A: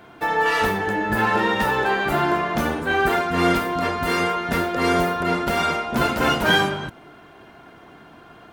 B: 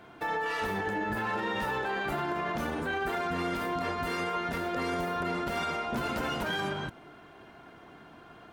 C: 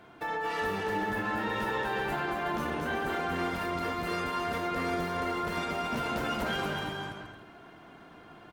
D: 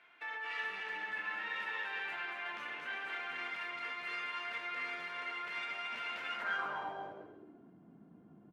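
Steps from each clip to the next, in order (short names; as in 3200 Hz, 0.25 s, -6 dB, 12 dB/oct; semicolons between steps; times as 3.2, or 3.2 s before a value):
limiter -18 dBFS, peak gain reduction 11 dB; high shelf 12000 Hz -4.5 dB; gain -5.5 dB
bouncing-ball echo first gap 0.23 s, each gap 0.6×, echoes 5; gain -2 dB
tracing distortion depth 0.024 ms; band-pass sweep 2300 Hz -> 200 Hz, 6.27–7.74; gain +1 dB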